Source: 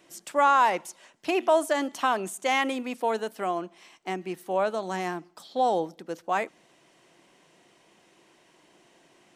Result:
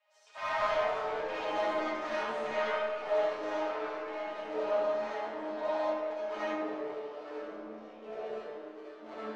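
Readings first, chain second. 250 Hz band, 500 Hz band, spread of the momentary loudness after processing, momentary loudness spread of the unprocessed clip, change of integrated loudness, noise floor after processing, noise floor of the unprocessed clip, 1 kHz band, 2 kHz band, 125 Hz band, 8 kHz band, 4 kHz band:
-8.5 dB, -3.0 dB, 14 LU, 14 LU, -7.0 dB, -50 dBFS, -62 dBFS, -9.0 dB, -5.5 dB, under -10 dB, under -15 dB, -7.5 dB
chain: cycle switcher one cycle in 3, inverted; Chebyshev high-pass 510 Hz, order 8; chord resonator G#3 fifth, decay 0.23 s; saturation -32.5 dBFS, distortion -13 dB; echo whose repeats swap between lows and highs 132 ms, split 1.9 kHz, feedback 55%, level -12.5 dB; ever faster or slower copies 142 ms, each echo -6 st, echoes 3, each echo -6 dB; distance through air 170 m; algorithmic reverb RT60 1.6 s, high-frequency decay 0.5×, pre-delay 25 ms, DRR -7.5 dB

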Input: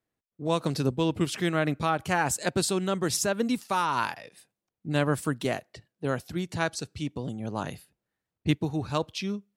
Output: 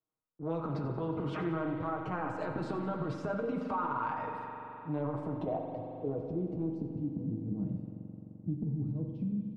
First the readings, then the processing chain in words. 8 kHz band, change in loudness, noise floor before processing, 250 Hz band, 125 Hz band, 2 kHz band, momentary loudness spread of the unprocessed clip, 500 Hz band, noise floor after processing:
under -35 dB, -7.5 dB, under -85 dBFS, -5.0 dB, -5.0 dB, -14.0 dB, 9 LU, -7.0 dB, -53 dBFS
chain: gate with hold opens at -55 dBFS; peaking EQ 1.7 kHz -11 dB 0.29 oct; comb 6.4 ms, depth 83%; dynamic bell 390 Hz, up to +5 dB, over -34 dBFS, Q 1.3; transient shaper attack -10 dB, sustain +11 dB; low-pass sweep 1.3 kHz -> 220 Hz, 4.66–7.23 s; compression, threshold -29 dBFS, peak gain reduction 15 dB; flange 0.51 Hz, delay 9 ms, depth 5.2 ms, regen -49%; on a send: feedback delay 90 ms, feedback 52%, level -13.5 dB; on the sum: spring tank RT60 2.6 s, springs 43 ms, chirp 30 ms, DRR 4 dB; three bands compressed up and down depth 40%

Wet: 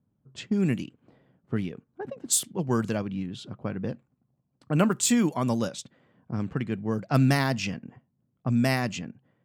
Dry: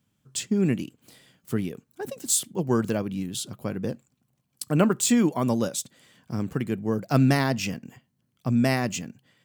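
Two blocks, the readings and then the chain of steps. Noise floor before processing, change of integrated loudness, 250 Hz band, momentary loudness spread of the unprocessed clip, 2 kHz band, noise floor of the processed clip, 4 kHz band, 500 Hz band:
-74 dBFS, -1.5 dB, -2.0 dB, 14 LU, -0.5 dB, -75 dBFS, -1.5 dB, -3.0 dB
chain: dynamic bell 390 Hz, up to -4 dB, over -34 dBFS, Q 0.93; level-controlled noise filter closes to 770 Hz, open at -20.5 dBFS

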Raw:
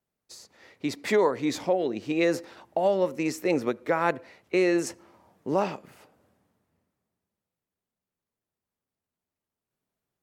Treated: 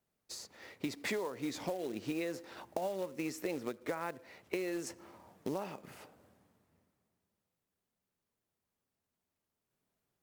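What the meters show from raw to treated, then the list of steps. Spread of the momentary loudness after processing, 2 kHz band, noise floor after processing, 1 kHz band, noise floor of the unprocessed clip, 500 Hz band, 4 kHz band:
14 LU, -11.0 dB, under -85 dBFS, -13.5 dB, under -85 dBFS, -13.5 dB, -8.0 dB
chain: compression 12:1, threshold -35 dBFS, peak gain reduction 17.5 dB; short-mantissa float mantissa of 2-bit; trim +1 dB

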